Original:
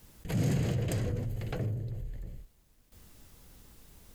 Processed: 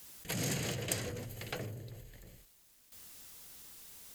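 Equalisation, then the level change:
spectral tilt +3.5 dB per octave
high-shelf EQ 9,300 Hz −6 dB
0.0 dB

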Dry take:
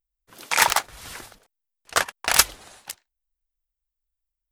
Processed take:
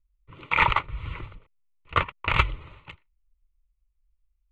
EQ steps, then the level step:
transistor ladder low-pass 2,900 Hz, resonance 25%
low shelf with overshoot 290 Hz +14 dB, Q 1.5
phaser with its sweep stopped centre 1,100 Hz, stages 8
+8.0 dB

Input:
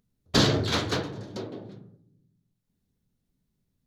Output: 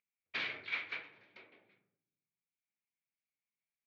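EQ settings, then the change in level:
resonant band-pass 2,300 Hz, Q 9
high-frequency loss of the air 210 metres
+6.0 dB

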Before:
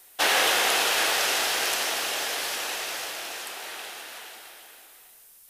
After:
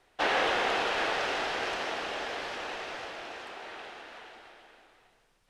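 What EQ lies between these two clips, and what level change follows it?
head-to-tape spacing loss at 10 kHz 29 dB
low-shelf EQ 180 Hz +6 dB
0.0 dB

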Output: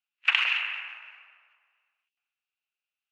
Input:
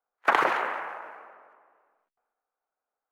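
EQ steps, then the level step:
high-pass with resonance 2,700 Hz, resonance Q 10
high-frequency loss of the air 75 metres
0.0 dB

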